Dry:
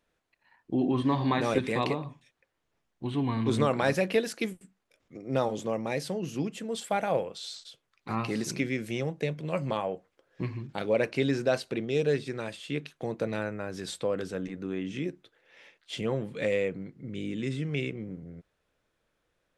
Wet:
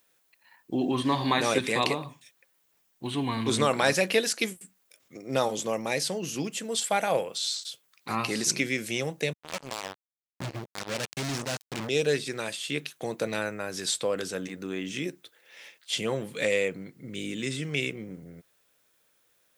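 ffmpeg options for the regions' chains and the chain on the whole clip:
-filter_complex "[0:a]asettb=1/sr,asplit=3[s0][s1][s2];[s0]atrim=end=9.334[s3];[s1]atrim=start=9.33:end=11.89,asetpts=PTS-STARTPTS,afade=t=in:d=0.004:c=qsin,afade=t=out:st=2.556:d=0.004:c=qsin,asubboost=boost=9.5:cutoff=190,acrusher=bits=3:mix=0:aa=0.5,volume=25.1,asoftclip=hard,volume=0.0398[s4];[s2]atrim=start=11.886[s5];[s3][s4]acrossfade=d=0.004:c1=hsin:c2=qsin[s6];[s6][s5]acrossfade=d=0.004:c1=qsin:c2=hsin,aemphasis=mode=production:type=riaa,acrossover=split=8800[s7][s8];[s8]acompressor=threshold=0.00224:ratio=4:attack=1:release=60[s9];[s7][s9]amix=inputs=2:normalize=0,equalizer=f=110:t=o:w=2.3:g=5.5,volume=1.41"

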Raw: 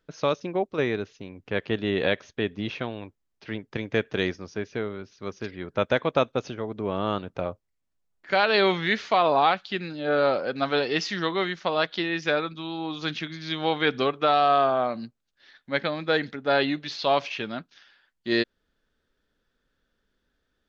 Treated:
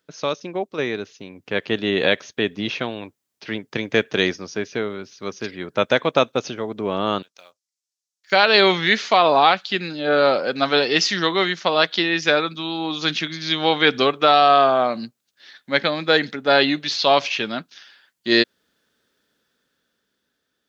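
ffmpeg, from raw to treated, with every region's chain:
-filter_complex "[0:a]asettb=1/sr,asplit=3[s0][s1][s2];[s0]atrim=end=7.224[s3];[s1]atrim=start=7.22:end=8.32,asetpts=PTS-STARTPTS,afade=t=in:d=0.004:c=qsin,afade=t=out:st=1.096:d=0.004:c=qsin,bandpass=f=5700:t=q:w=2.1,acrusher=bits=7:mode=log:mix=0:aa=0.000001[s4];[s2]atrim=start=8.316[s5];[s3][s4]acrossfade=d=0.004:c1=hsin:c2=qsin[s6];[s6][s5]acrossfade=d=0.004:c1=qsin:c2=hsin,highpass=140,highshelf=f=3800:g=10,dynaudnorm=f=210:g=13:m=2.51"

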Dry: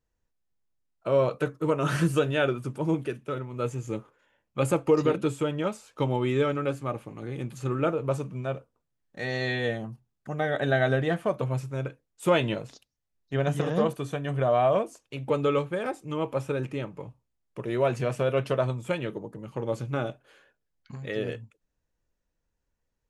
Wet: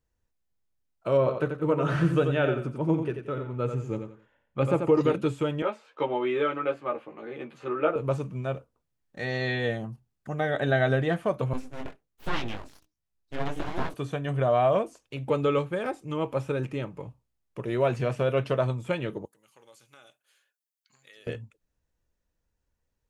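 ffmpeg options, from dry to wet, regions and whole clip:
-filter_complex "[0:a]asettb=1/sr,asplit=3[s0][s1][s2];[s0]atrim=end=1.174[s3];[s1]atrim=start=1.17:end=5.01,asetpts=PTS-STARTPTS,afade=t=in:d=0.004:c=qsin,afade=t=out:st=3.836:d=0.004:c=qsin,lowpass=f=2100:p=1,aecho=1:1:88|176|264:0.447|0.121|0.0326,atrim=end_sample=169344[s4];[s2]atrim=start=5.006[s5];[s3][s4]acrossfade=d=0.004:c1=hsin:c2=qsin[s6];[s6][s5]acrossfade=d=0.004:c1=qsin:c2=hsin,asettb=1/sr,asplit=3[s7][s8][s9];[s7]atrim=end=5.624[s10];[s8]atrim=start=5.62:end=7.96,asetpts=PTS-STARTPTS,afade=t=in:d=0.004:c=qsin,afade=t=out:st=2.336:d=0.004:c=qsin,acrossover=split=290 3600:gain=0.0794 1 0.0631[s11][s12][s13];[s11][s12][s13]amix=inputs=3:normalize=0,asplit=2[s14][s15];[s15]adelay=13,volume=0.75[s16];[s14][s16]amix=inputs=2:normalize=0,atrim=end_sample=103194[s17];[s9]atrim=start=7.956[s18];[s10][s17]acrossfade=d=0.004:c1=hsin:c2=qsin[s19];[s19][s18]acrossfade=d=0.004:c1=qsin:c2=hsin,asettb=1/sr,asplit=3[s20][s21][s22];[s20]atrim=end=11.534[s23];[s21]atrim=start=11.53:end=13.94,asetpts=PTS-STARTPTS,afade=t=in:d=0.004:c=qsin,afade=t=out:st=2.406:d=0.004:c=qsin,bandreject=f=76.64:t=h:w=4,bandreject=f=153.28:t=h:w=4,flanger=delay=15.5:depth=6.1:speed=1.3,aeval=exprs='abs(val(0))':c=same[s24];[s22]atrim=start=13.936[s25];[s23][s24]acrossfade=d=0.004:c1=hsin:c2=qsin[s26];[s26][s25]acrossfade=d=0.004:c1=qsin:c2=hsin,asettb=1/sr,asplit=3[s27][s28][s29];[s27]atrim=end=19.254[s30];[s28]atrim=start=19.25:end=21.27,asetpts=PTS-STARTPTS,afade=t=in:d=0.004:c=qsin,afade=t=out:st=2.016:d=0.004:c=qsin,aderivative,acompressor=threshold=0.00251:ratio=2:attack=3.2:release=140:knee=1:detection=peak[s31];[s29]atrim=start=21.266[s32];[s30][s31]acrossfade=d=0.004:c1=hsin:c2=qsin[s33];[s33][s32]acrossfade=d=0.004:c1=qsin:c2=hsin,acrossover=split=5100[s34][s35];[s35]acompressor=threshold=0.00158:ratio=4:attack=1:release=60[s36];[s34][s36]amix=inputs=2:normalize=0,equalizer=f=72:t=o:w=1:g=4.5"

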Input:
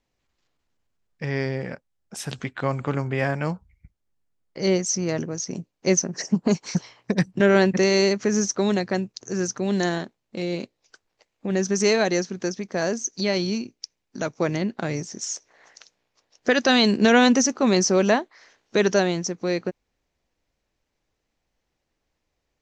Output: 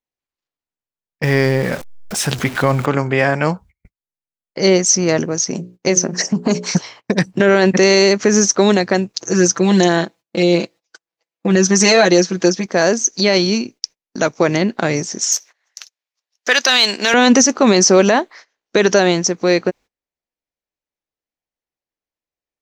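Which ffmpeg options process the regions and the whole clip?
-filter_complex "[0:a]asettb=1/sr,asplit=3[s0][s1][s2];[s0]atrim=end=1.234[s3];[s1]atrim=start=1.23:end=2.86,asetpts=PTS-STARTPTS,afade=t=in:d=0.004:c=qsin,afade=t=out:st=1.626:d=0.004:c=qsin,aeval=exprs='val(0)+0.5*0.0158*sgn(val(0))':c=same,lowshelf=f=140:g=8[s4];[s2]atrim=start=2.856[s5];[s3][s4]acrossfade=d=0.004:c1=hsin:c2=qsin[s6];[s6][s5]acrossfade=d=0.004:c1=qsin:c2=hsin,asettb=1/sr,asplit=3[s7][s8][s9];[s7]atrim=end=5.454[s10];[s8]atrim=start=5.45:end=6.72,asetpts=PTS-STARTPTS,afade=t=in:d=0.004:c=qsin,afade=t=out:st=1.266:d=0.004:c=qsin,lowshelf=f=150:g=3.5,bandreject=f=60:t=h:w=6,bandreject=f=120:t=h:w=6,bandreject=f=180:t=h:w=6,bandreject=f=240:t=h:w=6,bandreject=f=300:t=h:w=6,bandreject=f=360:t=h:w=6,bandreject=f=420:t=h:w=6,bandreject=f=480:t=h:w=6,bandreject=f=540:t=h:w=6,bandreject=f=600:t=h:w=6,acompressor=threshold=0.112:ratio=6:attack=3.2:release=140:knee=1:detection=peak[s11];[s9]atrim=start=6.716[s12];[s10][s11]acrossfade=d=0.004:c1=hsin:c2=qsin[s13];[s13][s12]acrossfade=d=0.004:c1=qsin:c2=hsin,asettb=1/sr,asplit=3[s14][s15][s16];[s14]atrim=end=9.134[s17];[s15]atrim=start=9.13:end=12.66,asetpts=PTS-STARTPTS,afade=t=in:d=0.004:c=qsin,afade=t=out:st=3.526:d=0.004:c=qsin,highpass=44,aecho=1:1:6:0.76,atrim=end_sample=155673[s18];[s16]atrim=start=12.656[s19];[s17][s18]acrossfade=d=0.004:c1=hsin:c2=qsin[s20];[s20][s19]acrossfade=d=0.004:c1=qsin:c2=hsin,asettb=1/sr,asplit=3[s21][s22][s23];[s21]atrim=end=15.324[s24];[s22]atrim=start=15.32:end=17.14,asetpts=PTS-STARTPTS,afade=t=in:d=0.004:c=qsin,afade=t=out:st=1.816:d=0.004:c=qsin,aeval=exprs='if(lt(val(0),0),0.708*val(0),val(0))':c=same,highpass=f=1200:p=1,highshelf=f=2100:g=6[s25];[s23]atrim=start=17.136[s26];[s24][s25]acrossfade=d=0.004:c1=hsin:c2=qsin[s27];[s27][s26]acrossfade=d=0.004:c1=qsin:c2=hsin,agate=range=0.0501:threshold=0.00501:ratio=16:detection=peak,lowshelf=f=170:g=-10,alimiter=level_in=4.47:limit=0.891:release=50:level=0:latency=1,volume=0.891"

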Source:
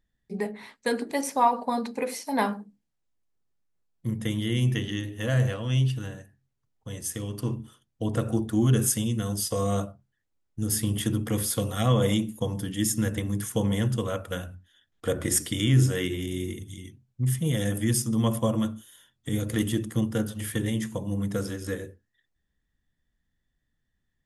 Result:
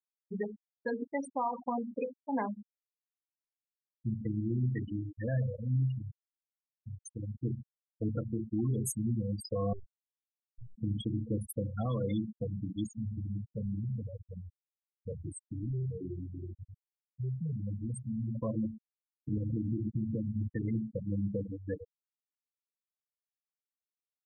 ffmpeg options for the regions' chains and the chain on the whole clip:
-filter_complex "[0:a]asettb=1/sr,asplit=3[s0][s1][s2];[s0]atrim=end=9.734[s3];[s1]atrim=start=9.73:end=10.78,asetpts=PTS-STARTPTS,afade=t=in:d=0.004:c=qsin,afade=t=out:st=1.046:d=0.004:c=qsin,acompressor=threshold=0.00316:ratio=1.5:attack=3.2:release=140:knee=1:detection=peak,afreqshift=-100[s4];[s2]atrim=start=10.776[s5];[s3][s4]acrossfade=d=0.004:c1=hsin:c2=qsin[s6];[s6][s5]acrossfade=d=0.004:c1=qsin:c2=hsin,asettb=1/sr,asplit=3[s7][s8][s9];[s7]atrim=end=12.864[s10];[s8]atrim=start=12.86:end=18.35,asetpts=PTS-STARTPTS,afade=t=in:d=0.004:c=qsin,afade=t=out:st=5.486:d=0.004:c=qsin,equalizer=f=1100:t=o:w=2.1:g=-15,asoftclip=type=hard:threshold=0.0398,aecho=1:1:320:0.0891,atrim=end_sample=242109[s11];[s9]atrim=start=18.346[s12];[s10][s11]acrossfade=d=0.004:c1=hsin:c2=qsin[s13];[s13][s12]acrossfade=d=0.004:c1=qsin:c2=hsin,asettb=1/sr,asplit=3[s14][s15][s16];[s14]atrim=end=19.374[s17];[s15]atrim=start=19.37:end=20.48,asetpts=PTS-STARTPTS,afade=t=in:d=0.004:c=qsin,afade=t=out:st=1.106:d=0.004:c=qsin,tiltshelf=f=1100:g=9.5,acompressor=threshold=0.0631:ratio=16:attack=3.2:release=140:knee=1:detection=peak[s18];[s16]atrim=start=20.476[s19];[s17][s18]acrossfade=d=0.004:c1=hsin:c2=qsin[s20];[s20][s19]acrossfade=d=0.004:c1=qsin:c2=hsin,afftfilt=real='re*gte(hypot(re,im),0.112)':imag='im*gte(hypot(re,im),0.112)':win_size=1024:overlap=0.75,alimiter=limit=0.1:level=0:latency=1:release=163,volume=0.631"

